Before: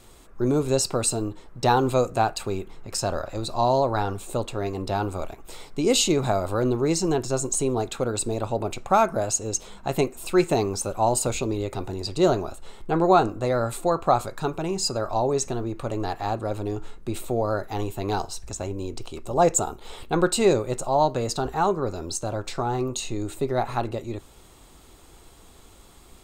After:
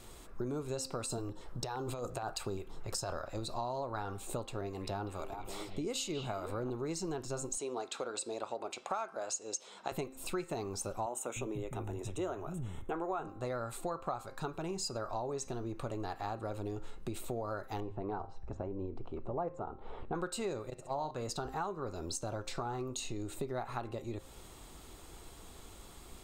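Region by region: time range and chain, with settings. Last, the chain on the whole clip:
0:01.06–0:03.13: compressor whose output falls as the input rises −26 dBFS + auto-filter notch square 4.3 Hz 230–2,300 Hz
0:04.61–0:06.70: two-band tremolo in antiphase 2.5 Hz, depth 50%, crossover 720 Hz + echo through a band-pass that steps 194 ms, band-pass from 2,600 Hz, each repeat −1.4 octaves, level −6 dB
0:07.57–0:09.92: band-pass filter 380–6,500 Hz + high-shelf EQ 5,100 Hz +7.5 dB
0:11.06–0:13.27: Butterworth band-reject 4,600 Hz, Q 1.9 + multiband delay without the direct sound highs, lows 300 ms, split 200 Hz
0:17.80–0:20.15: low-pass filter 1,200 Hz + mains-hum notches 50/100/150 Hz
0:20.70–0:21.11: noise gate −24 dBFS, range −18 dB + hum removal 87.43 Hz, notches 31 + flutter between parallel walls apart 11.2 metres, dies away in 0.39 s
whole clip: hum removal 264.3 Hz, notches 23; dynamic equaliser 1,300 Hz, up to +5 dB, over −37 dBFS, Q 1.5; downward compressor 5 to 1, threshold −35 dBFS; level −1.5 dB

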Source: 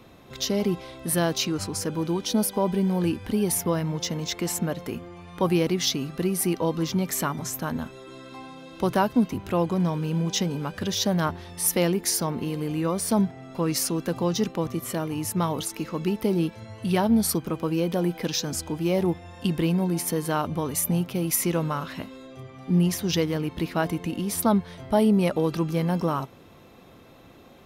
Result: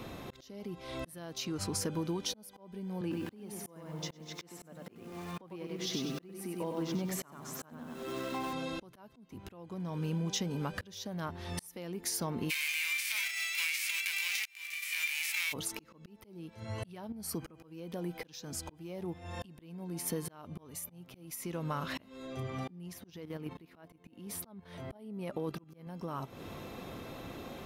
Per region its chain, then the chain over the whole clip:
0:03.01–0:08.53: Bessel high-pass filter 150 Hz, order 6 + high-shelf EQ 3,800 Hz −8 dB + feedback echo at a low word length 97 ms, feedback 35%, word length 8 bits, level −4.5 dB
0:12.49–0:15.52: spectral envelope flattened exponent 0.3 + transient designer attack −4 dB, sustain +9 dB + high-pass with resonance 2,300 Hz, resonance Q 8.3
0:17.12–0:17.63: notch filter 3,600 Hz, Q 5.2 + downward compressor 2.5 to 1, threshold −31 dBFS
0:22.93–0:25.87: high-pass filter 92 Hz 6 dB per octave + parametric band 5,900 Hz −5 dB 1.7 octaves + output level in coarse steps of 9 dB
whole clip: downward compressor 16 to 1, threshold −37 dBFS; volume swells 567 ms; level +6 dB

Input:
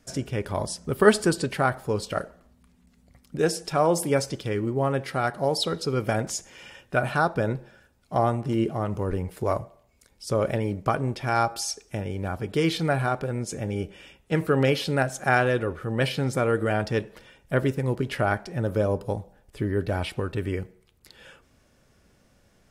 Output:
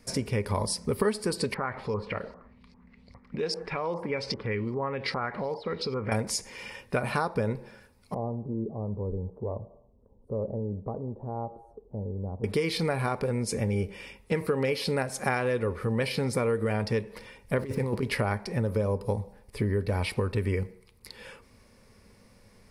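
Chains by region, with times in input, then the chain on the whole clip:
0:01.54–0:06.12: downward compressor 4 to 1, threshold −33 dBFS + auto-filter low-pass saw up 2.5 Hz 1,000–5,400 Hz
0:08.14–0:12.44: inverse Chebyshev low-pass filter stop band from 2,000 Hz, stop band 50 dB + downward compressor 1.5 to 1, threshold −52 dBFS
0:17.58–0:18.03: compressor whose output falls as the input rises −27 dBFS, ratio −0.5 + slack as between gear wheels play −46 dBFS
whole clip: EQ curve with evenly spaced ripples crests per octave 0.9, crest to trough 8 dB; downward compressor, threshold −27 dBFS; level +3 dB

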